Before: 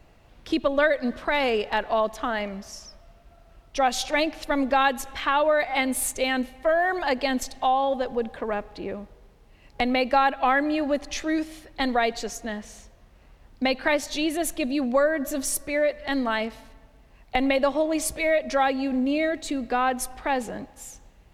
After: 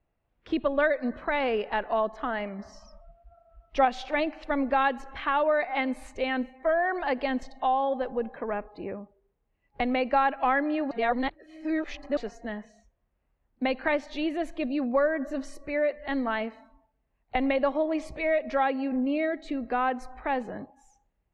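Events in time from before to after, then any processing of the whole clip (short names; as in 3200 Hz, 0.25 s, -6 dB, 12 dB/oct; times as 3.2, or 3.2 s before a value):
2.59–3.85 gain +4 dB
10.91–12.17 reverse
whole clip: LPF 2500 Hz 12 dB/oct; spectral noise reduction 19 dB; gain -3 dB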